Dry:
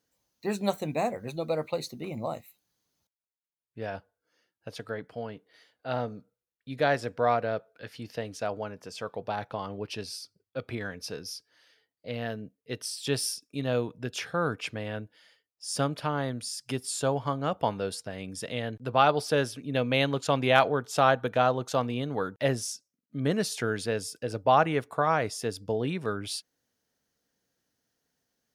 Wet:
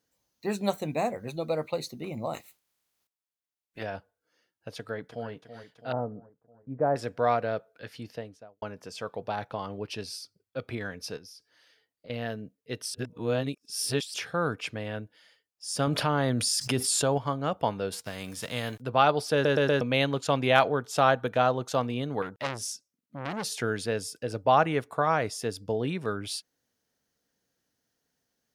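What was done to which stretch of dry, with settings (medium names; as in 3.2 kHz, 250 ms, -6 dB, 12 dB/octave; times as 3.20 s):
2.33–3.82 s: spectral peaks clipped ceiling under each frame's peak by 21 dB
4.76–5.30 s: echo throw 330 ms, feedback 60%, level -10.5 dB
5.92–6.96 s: low-pass 1.1 kHz 24 dB/octave
7.94–8.62 s: studio fade out
11.17–12.10 s: compression, threshold -46 dBFS
12.94–14.14 s: reverse
15.87–17.18 s: level flattener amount 70%
17.91–18.80 s: formants flattened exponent 0.6
19.33 s: stutter in place 0.12 s, 4 plays
22.22–23.50 s: transformer saturation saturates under 2.5 kHz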